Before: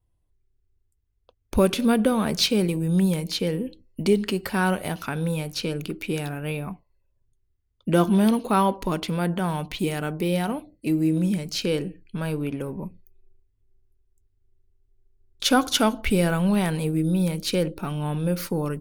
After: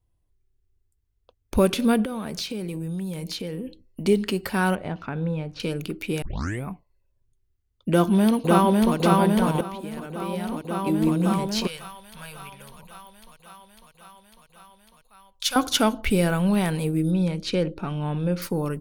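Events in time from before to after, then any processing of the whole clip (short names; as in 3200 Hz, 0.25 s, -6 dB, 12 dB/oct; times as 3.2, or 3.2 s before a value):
2.04–4.07 compressor 5:1, threshold -28 dBFS
4.75–5.6 tape spacing loss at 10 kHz 30 dB
6.22 tape start 0.43 s
7.89–8.96 echo throw 0.55 s, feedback 80%, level -1 dB
9.61–11.11 fade in quadratic, from -13.5 dB
11.67–15.56 passive tone stack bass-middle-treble 10-0-10
17.11–18.42 air absorption 84 m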